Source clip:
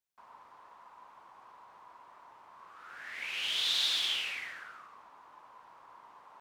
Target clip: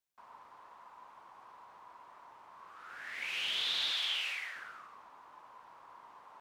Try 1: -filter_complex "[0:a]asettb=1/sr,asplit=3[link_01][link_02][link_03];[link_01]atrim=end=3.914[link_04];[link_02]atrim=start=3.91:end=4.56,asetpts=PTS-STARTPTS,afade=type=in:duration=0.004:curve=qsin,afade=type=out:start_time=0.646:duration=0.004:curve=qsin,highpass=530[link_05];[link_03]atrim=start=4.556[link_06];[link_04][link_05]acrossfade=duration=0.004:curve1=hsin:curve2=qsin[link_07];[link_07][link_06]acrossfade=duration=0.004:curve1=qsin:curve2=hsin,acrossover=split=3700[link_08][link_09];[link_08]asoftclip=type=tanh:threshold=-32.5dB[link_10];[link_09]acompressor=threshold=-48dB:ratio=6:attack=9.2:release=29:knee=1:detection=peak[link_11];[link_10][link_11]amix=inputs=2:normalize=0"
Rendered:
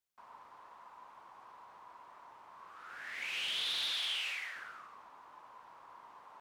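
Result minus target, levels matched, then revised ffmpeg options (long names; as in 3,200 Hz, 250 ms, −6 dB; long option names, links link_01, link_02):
soft clipping: distortion +19 dB
-filter_complex "[0:a]asettb=1/sr,asplit=3[link_01][link_02][link_03];[link_01]atrim=end=3.914[link_04];[link_02]atrim=start=3.91:end=4.56,asetpts=PTS-STARTPTS,afade=type=in:duration=0.004:curve=qsin,afade=type=out:start_time=0.646:duration=0.004:curve=qsin,highpass=530[link_05];[link_03]atrim=start=4.556[link_06];[link_04][link_05]acrossfade=duration=0.004:curve1=hsin:curve2=qsin[link_07];[link_07][link_06]acrossfade=duration=0.004:curve1=qsin:curve2=hsin,acrossover=split=3700[link_08][link_09];[link_08]asoftclip=type=tanh:threshold=-20.5dB[link_10];[link_09]acompressor=threshold=-48dB:ratio=6:attack=9.2:release=29:knee=1:detection=peak[link_11];[link_10][link_11]amix=inputs=2:normalize=0"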